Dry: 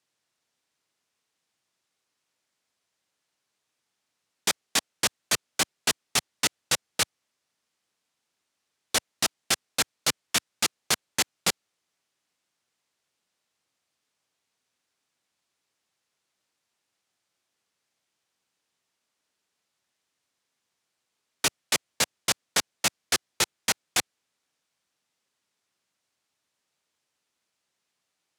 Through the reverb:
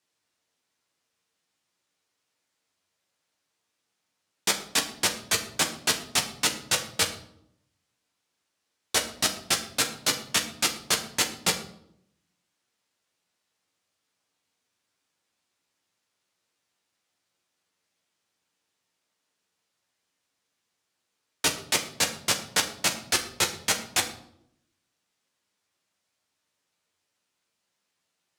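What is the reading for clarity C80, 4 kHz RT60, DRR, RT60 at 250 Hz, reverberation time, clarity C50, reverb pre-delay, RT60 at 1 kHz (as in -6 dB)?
13.5 dB, 0.50 s, 2.0 dB, 0.95 s, 0.75 s, 11.0 dB, 11 ms, 0.65 s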